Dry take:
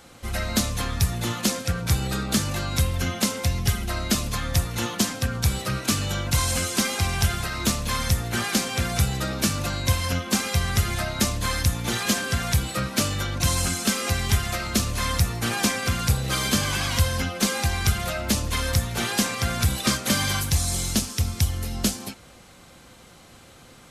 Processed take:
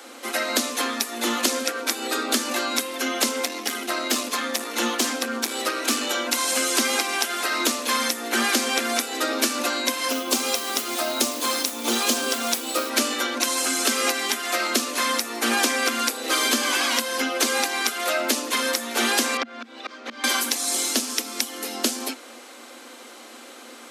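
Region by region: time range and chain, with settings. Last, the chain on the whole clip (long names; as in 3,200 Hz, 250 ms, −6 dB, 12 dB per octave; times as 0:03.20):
0:03.29–0:06.10: high-shelf EQ 12,000 Hz −2.5 dB + tube saturation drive 17 dB, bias 0.35
0:10.10–0:12.90: parametric band 1,800 Hz −10.5 dB 0.63 octaves + noise that follows the level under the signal 14 dB
0:19.37–0:20.24: volume swells 586 ms + high-frequency loss of the air 210 metres
whole clip: downward compressor, threshold −24 dBFS; Chebyshev high-pass filter 230 Hz, order 10; level +8 dB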